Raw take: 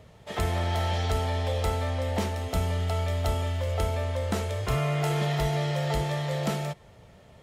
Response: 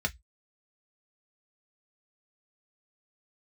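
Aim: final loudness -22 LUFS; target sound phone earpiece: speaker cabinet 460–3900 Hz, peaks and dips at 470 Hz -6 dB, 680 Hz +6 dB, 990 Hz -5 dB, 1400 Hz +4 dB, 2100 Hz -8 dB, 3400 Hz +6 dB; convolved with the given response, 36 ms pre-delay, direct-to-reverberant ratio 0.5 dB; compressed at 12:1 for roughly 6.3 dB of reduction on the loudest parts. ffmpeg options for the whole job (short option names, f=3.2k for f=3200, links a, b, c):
-filter_complex "[0:a]acompressor=threshold=-28dB:ratio=12,asplit=2[a][b];[1:a]atrim=start_sample=2205,adelay=36[c];[b][c]afir=irnorm=-1:irlink=0,volume=-7dB[d];[a][d]amix=inputs=2:normalize=0,highpass=460,equalizer=f=470:t=q:w=4:g=-6,equalizer=f=680:t=q:w=4:g=6,equalizer=f=990:t=q:w=4:g=-5,equalizer=f=1.4k:t=q:w=4:g=4,equalizer=f=2.1k:t=q:w=4:g=-8,equalizer=f=3.4k:t=q:w=4:g=6,lowpass=f=3.9k:w=0.5412,lowpass=f=3.9k:w=1.3066,volume=11dB"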